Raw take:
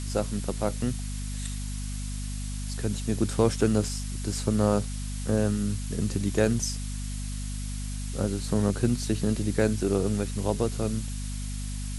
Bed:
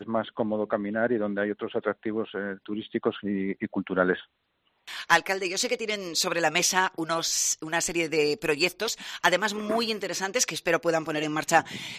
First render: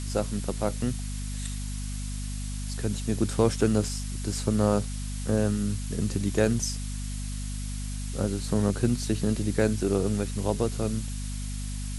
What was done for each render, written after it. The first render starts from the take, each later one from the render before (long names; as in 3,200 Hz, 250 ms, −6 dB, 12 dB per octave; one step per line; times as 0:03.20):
no processing that can be heard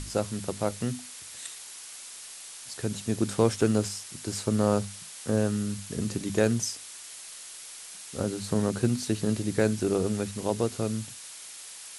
mains-hum notches 50/100/150/200/250 Hz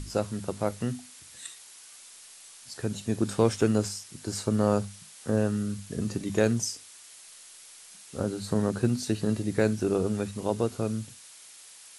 noise reduction from a noise print 6 dB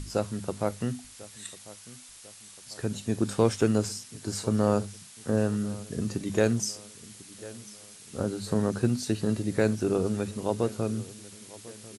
repeating echo 1,046 ms, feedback 46%, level −19.5 dB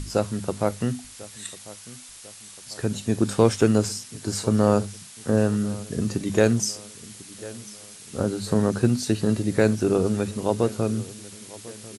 level +5 dB